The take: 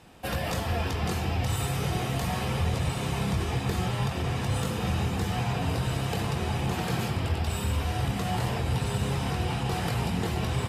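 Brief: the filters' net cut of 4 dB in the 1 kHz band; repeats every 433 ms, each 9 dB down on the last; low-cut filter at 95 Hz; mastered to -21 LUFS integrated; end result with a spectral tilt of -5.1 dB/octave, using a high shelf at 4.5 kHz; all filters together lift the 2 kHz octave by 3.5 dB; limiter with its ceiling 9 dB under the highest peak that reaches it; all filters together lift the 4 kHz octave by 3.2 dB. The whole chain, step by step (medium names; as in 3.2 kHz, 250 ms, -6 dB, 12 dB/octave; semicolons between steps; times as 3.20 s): high-pass 95 Hz; peaking EQ 1 kHz -7 dB; peaking EQ 2 kHz +6 dB; peaking EQ 4 kHz +5.5 dB; treble shelf 4.5 kHz -6.5 dB; peak limiter -25 dBFS; feedback delay 433 ms, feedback 35%, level -9 dB; trim +12 dB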